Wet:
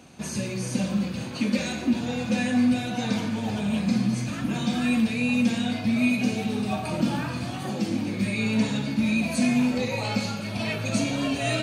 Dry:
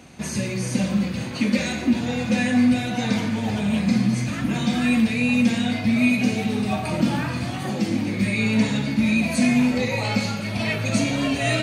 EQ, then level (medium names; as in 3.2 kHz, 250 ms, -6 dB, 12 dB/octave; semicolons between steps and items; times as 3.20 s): bass shelf 67 Hz -7 dB; peaking EQ 2 kHz -6.5 dB 0.29 oct; -3.0 dB